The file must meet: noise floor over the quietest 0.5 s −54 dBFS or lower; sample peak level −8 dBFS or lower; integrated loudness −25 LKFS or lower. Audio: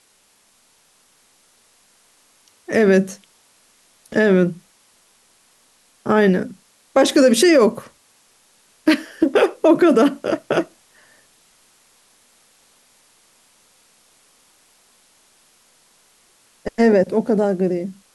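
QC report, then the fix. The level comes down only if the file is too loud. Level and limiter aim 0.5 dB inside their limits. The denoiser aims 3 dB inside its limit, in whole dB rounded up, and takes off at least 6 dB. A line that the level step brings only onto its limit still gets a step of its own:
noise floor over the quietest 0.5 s −58 dBFS: in spec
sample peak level −5.0 dBFS: out of spec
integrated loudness −17.0 LKFS: out of spec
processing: level −8.5 dB

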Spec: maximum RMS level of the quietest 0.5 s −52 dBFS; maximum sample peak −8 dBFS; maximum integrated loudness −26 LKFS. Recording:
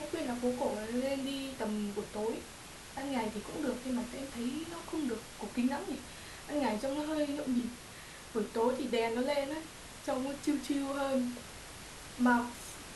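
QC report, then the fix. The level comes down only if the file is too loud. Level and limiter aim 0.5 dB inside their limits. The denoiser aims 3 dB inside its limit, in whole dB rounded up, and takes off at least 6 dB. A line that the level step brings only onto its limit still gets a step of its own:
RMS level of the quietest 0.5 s −49 dBFS: out of spec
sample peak −17.0 dBFS: in spec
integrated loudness −35.5 LKFS: in spec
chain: broadband denoise 6 dB, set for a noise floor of −49 dBFS

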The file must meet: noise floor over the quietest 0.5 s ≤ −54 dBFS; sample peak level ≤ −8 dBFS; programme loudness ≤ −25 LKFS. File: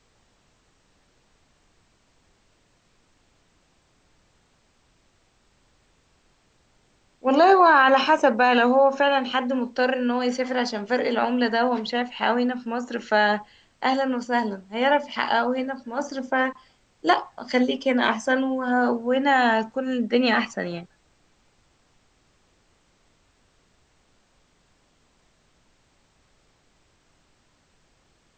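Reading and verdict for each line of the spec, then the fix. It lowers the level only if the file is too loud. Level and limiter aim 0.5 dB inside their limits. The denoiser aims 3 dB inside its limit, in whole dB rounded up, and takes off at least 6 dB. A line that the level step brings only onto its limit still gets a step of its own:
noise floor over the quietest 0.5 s −64 dBFS: in spec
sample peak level −4.5 dBFS: out of spec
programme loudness −22.0 LKFS: out of spec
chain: level −3.5 dB
brickwall limiter −8.5 dBFS

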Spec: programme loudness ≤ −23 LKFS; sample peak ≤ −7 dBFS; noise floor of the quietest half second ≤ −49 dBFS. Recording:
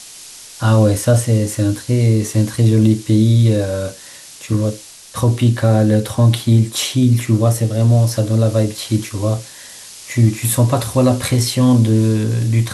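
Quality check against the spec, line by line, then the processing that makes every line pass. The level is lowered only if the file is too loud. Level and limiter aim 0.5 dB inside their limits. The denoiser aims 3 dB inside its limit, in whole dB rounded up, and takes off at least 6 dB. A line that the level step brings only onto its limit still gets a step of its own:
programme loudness −15.5 LKFS: out of spec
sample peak −3.5 dBFS: out of spec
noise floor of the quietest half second −38 dBFS: out of spec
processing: broadband denoise 6 dB, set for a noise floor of −38 dBFS
level −8 dB

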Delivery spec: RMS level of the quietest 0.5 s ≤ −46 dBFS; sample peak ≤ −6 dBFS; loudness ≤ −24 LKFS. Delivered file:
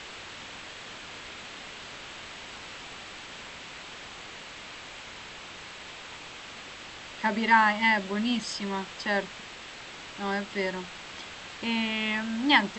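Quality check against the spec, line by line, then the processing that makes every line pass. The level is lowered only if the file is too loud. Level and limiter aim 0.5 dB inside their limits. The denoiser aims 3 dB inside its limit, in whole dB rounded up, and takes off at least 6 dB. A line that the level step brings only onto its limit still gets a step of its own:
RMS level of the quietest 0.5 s −44 dBFS: out of spec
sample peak −7.0 dBFS: in spec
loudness −30.0 LKFS: in spec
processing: broadband denoise 6 dB, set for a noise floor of −44 dBFS

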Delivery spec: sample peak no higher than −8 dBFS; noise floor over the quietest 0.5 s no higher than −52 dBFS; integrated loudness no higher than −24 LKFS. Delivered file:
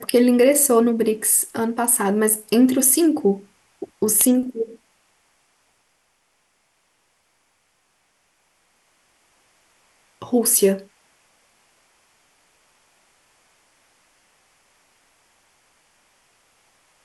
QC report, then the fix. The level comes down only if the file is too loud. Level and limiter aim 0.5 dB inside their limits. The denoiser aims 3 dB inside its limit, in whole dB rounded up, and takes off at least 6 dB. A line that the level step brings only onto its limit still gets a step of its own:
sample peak −5.5 dBFS: out of spec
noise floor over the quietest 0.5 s −66 dBFS: in spec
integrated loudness −18.0 LKFS: out of spec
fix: level −6.5 dB

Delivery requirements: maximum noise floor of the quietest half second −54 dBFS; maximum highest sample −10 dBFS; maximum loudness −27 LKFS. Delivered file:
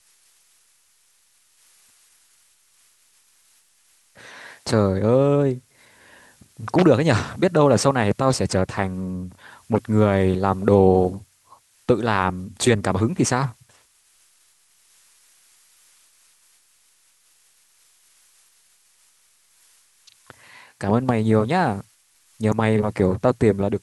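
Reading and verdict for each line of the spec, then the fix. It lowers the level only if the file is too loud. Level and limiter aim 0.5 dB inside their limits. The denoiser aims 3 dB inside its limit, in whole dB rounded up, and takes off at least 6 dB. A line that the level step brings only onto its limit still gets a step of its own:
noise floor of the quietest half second −61 dBFS: in spec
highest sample −2.0 dBFS: out of spec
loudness −20.5 LKFS: out of spec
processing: level −7 dB
brickwall limiter −10.5 dBFS

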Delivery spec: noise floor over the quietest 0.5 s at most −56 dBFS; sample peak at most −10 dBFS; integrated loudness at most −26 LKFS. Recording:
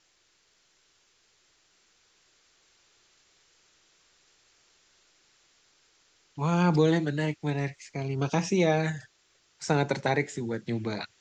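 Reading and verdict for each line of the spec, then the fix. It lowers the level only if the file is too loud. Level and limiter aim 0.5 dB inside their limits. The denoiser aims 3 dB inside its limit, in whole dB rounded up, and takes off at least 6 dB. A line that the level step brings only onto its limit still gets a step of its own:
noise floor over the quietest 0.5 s −68 dBFS: in spec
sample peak −11.5 dBFS: in spec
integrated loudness −28.0 LKFS: in spec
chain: no processing needed

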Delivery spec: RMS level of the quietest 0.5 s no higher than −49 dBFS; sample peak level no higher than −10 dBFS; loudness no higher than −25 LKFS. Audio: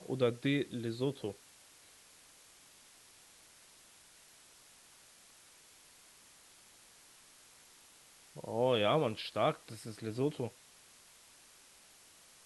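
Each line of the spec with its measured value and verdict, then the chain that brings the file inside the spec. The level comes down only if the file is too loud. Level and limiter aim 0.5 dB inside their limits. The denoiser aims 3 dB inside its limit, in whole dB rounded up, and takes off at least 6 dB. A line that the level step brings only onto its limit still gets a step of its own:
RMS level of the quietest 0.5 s −61 dBFS: in spec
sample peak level −17.5 dBFS: in spec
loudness −35.0 LKFS: in spec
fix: no processing needed

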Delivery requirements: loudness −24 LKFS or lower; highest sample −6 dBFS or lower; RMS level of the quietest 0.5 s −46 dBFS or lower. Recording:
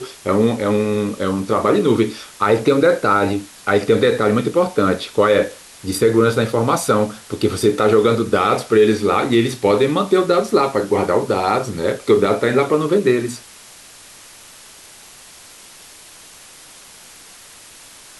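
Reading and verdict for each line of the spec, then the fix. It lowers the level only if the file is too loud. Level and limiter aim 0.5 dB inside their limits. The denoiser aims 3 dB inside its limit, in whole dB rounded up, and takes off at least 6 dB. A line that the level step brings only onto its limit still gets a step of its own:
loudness −17.0 LKFS: out of spec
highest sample −4.0 dBFS: out of spec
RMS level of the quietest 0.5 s −42 dBFS: out of spec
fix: level −7.5 dB

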